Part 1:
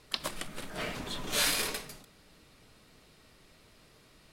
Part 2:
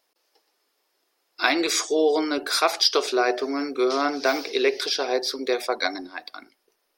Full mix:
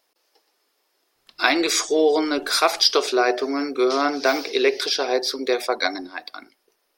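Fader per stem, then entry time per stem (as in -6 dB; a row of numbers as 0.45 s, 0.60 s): -18.0 dB, +2.5 dB; 1.15 s, 0.00 s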